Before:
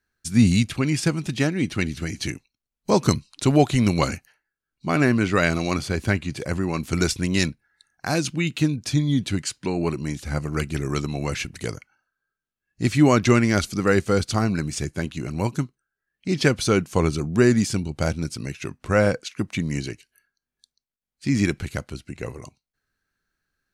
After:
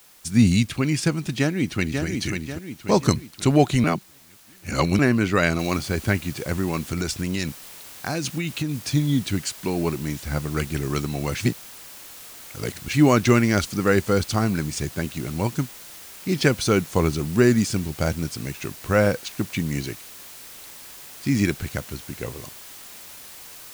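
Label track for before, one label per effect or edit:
1.380000	2.040000	delay throw 540 ms, feedback 45%, level −5 dB
3.840000	4.990000	reverse
5.590000	5.590000	noise floor change −52 dB −42 dB
6.770000	8.900000	downward compressor, threshold −21 dBFS
11.400000	12.930000	reverse

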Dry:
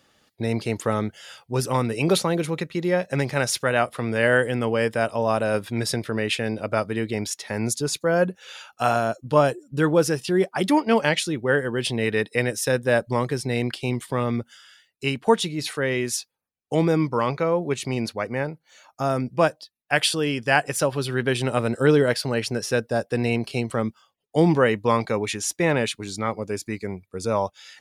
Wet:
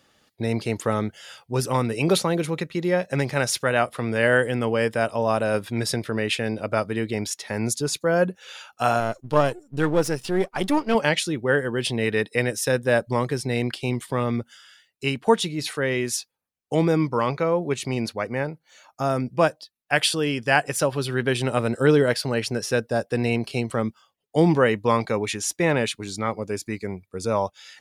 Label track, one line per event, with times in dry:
9.000000	10.950000	gain on one half-wave negative side −7 dB

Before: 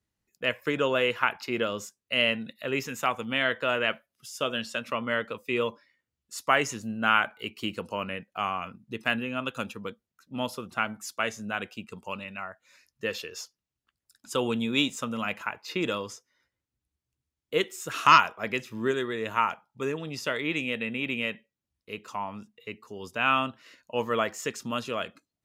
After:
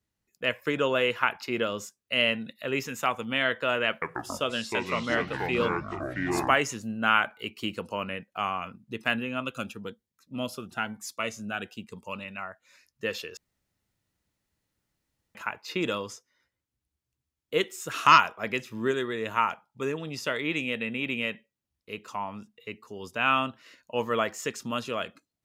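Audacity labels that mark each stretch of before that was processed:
3.880000	6.580000	delay with pitch and tempo change per echo 136 ms, each echo −5 semitones, echoes 3
9.420000	12.140000	phaser whose notches keep moving one way rising 1.1 Hz
13.370000	15.350000	fill with room tone

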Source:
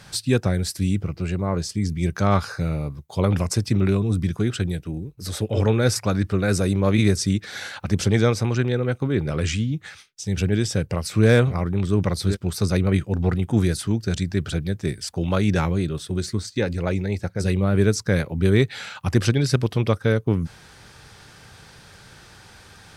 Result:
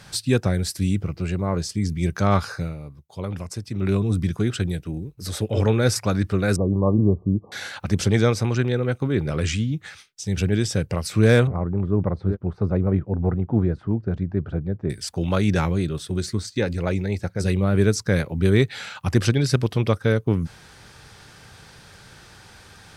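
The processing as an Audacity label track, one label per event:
2.540000	3.950000	duck −9.5 dB, fades 0.21 s
6.560000	7.520000	linear-phase brick-wall low-pass 1,200 Hz
11.470000	14.900000	Chebyshev low-pass filter 890 Hz

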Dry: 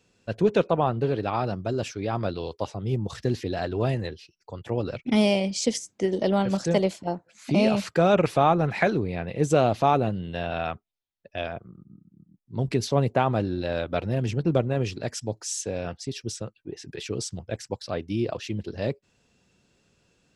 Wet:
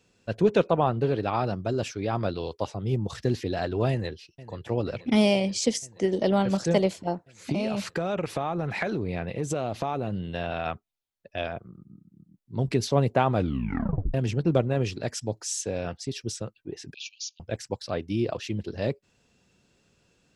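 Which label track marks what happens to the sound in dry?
3.900000	4.710000	delay throw 480 ms, feedback 80%, level −17.5 dB
7.520000	10.660000	downward compressor, threshold −24 dBFS
13.350000	13.350000	tape stop 0.79 s
16.940000	17.400000	linear-phase brick-wall band-pass 2,300–7,100 Hz

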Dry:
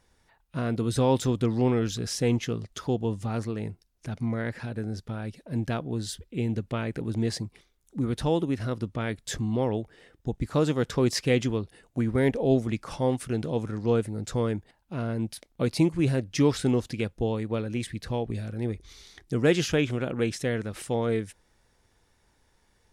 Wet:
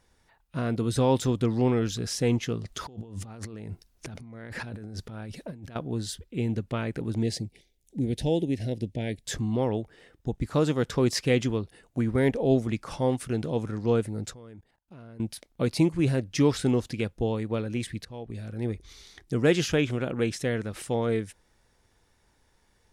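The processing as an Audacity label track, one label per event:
2.650000	5.760000	compressor whose output falls as the input rises −40 dBFS
7.230000	9.250000	Butterworth band-reject 1,200 Hz, Q 0.94
14.300000	15.200000	output level in coarse steps of 23 dB
18.050000	18.670000	fade in, from −18 dB

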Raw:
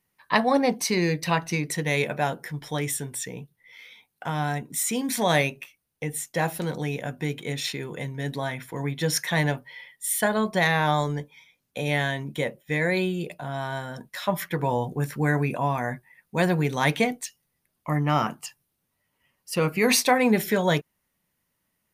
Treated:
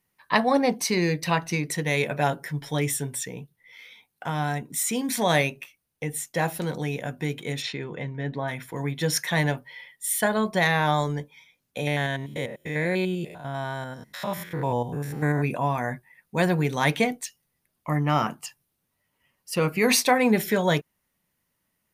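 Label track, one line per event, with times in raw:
2.100000	3.230000	comb filter 7.2 ms, depth 51%
7.610000	8.470000	low-pass filter 4,800 Hz → 2,000 Hz
11.870000	15.440000	spectrum averaged block by block every 100 ms

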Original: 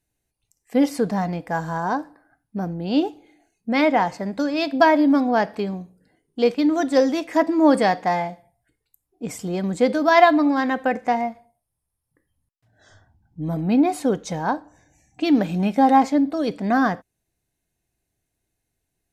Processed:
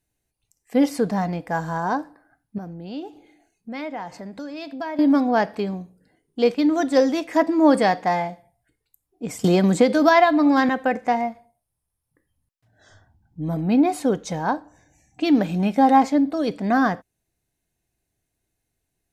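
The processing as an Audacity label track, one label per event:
2.580000	4.990000	downward compressor 2 to 1, threshold −39 dBFS
9.440000	10.690000	multiband upward and downward compressor depth 100%

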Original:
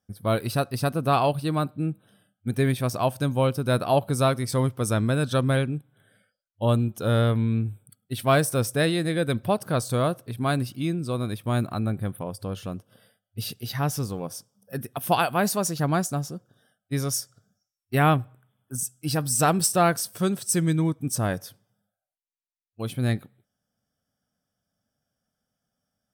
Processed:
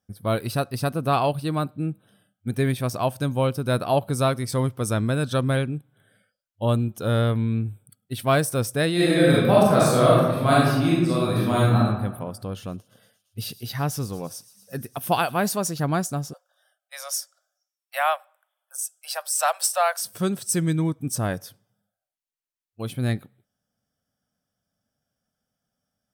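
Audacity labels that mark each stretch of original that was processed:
8.930000	11.770000	thrown reverb, RT60 1.2 s, DRR −7.5 dB
12.450000	15.560000	delay with a high-pass on its return 115 ms, feedback 81%, high-pass 4,700 Hz, level −16.5 dB
16.330000	20.020000	Butterworth high-pass 540 Hz 96 dB per octave

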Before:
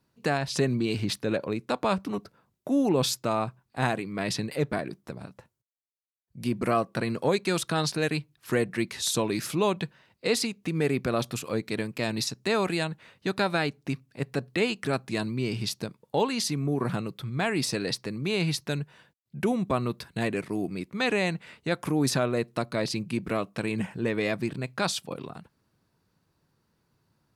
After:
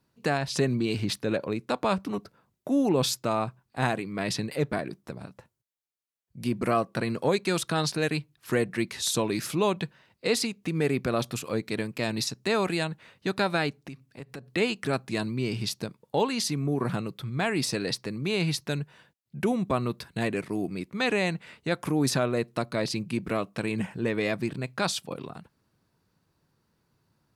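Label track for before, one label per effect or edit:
13.830000	14.510000	downward compressor 4 to 1, threshold −38 dBFS

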